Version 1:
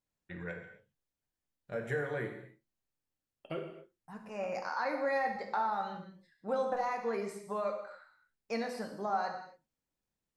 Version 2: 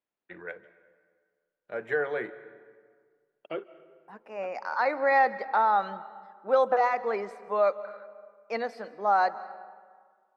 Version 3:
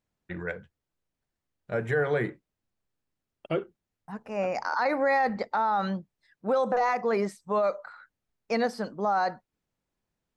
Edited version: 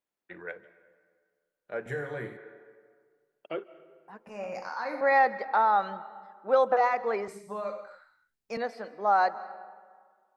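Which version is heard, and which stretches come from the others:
2
0:01.86–0:02.37: punch in from 1
0:04.27–0:05.01: punch in from 1
0:07.28–0:08.57: punch in from 1
not used: 3

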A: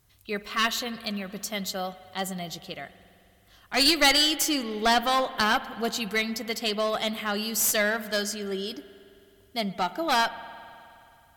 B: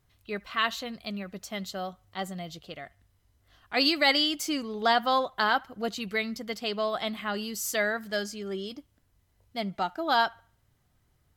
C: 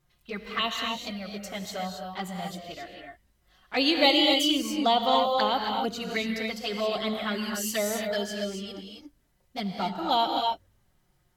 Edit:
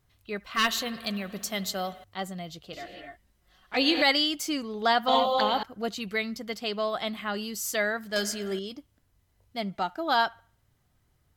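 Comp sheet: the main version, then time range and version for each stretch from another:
B
0:00.55–0:02.04: punch in from A
0:02.73–0:04.02: punch in from C
0:05.08–0:05.63: punch in from C
0:08.16–0:08.59: punch in from A

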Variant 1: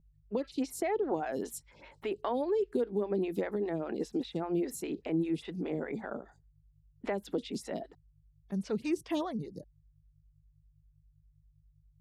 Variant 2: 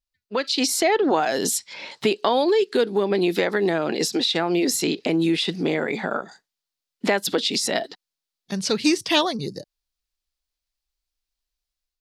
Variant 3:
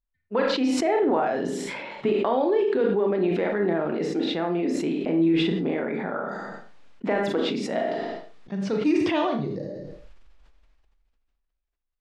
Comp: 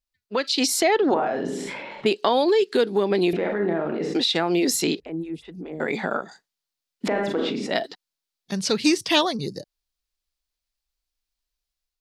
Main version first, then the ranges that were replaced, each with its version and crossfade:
2
0:01.14–0:02.06: punch in from 3
0:03.33–0:04.15: punch in from 3
0:05.00–0:05.80: punch in from 1
0:07.08–0:07.71: punch in from 3

